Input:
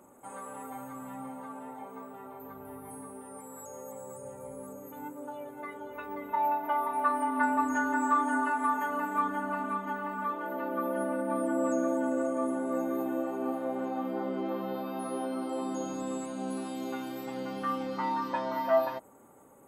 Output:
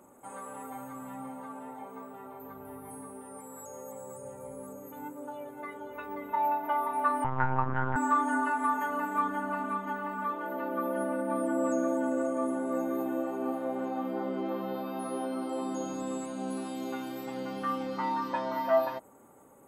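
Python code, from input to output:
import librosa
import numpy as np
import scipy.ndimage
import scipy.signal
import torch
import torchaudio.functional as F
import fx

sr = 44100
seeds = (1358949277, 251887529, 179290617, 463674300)

y = fx.lpc_monotone(x, sr, seeds[0], pitch_hz=130.0, order=10, at=(7.24, 7.96))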